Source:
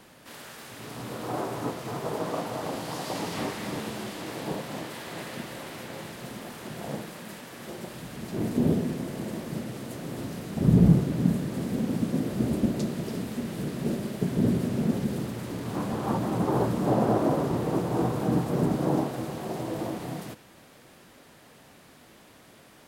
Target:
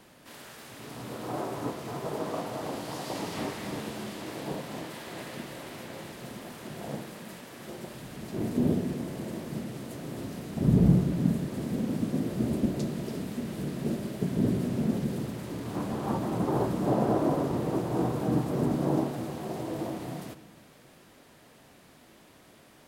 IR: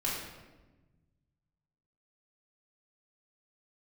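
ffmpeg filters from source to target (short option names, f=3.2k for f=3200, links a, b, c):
-filter_complex "[0:a]asplit=2[a][b];[1:a]atrim=start_sample=2205,lowpass=f=1.5k:w=0.5412,lowpass=f=1.5k:w=1.3066[c];[b][c]afir=irnorm=-1:irlink=0,volume=-17dB[d];[a][d]amix=inputs=2:normalize=0,volume=-3dB"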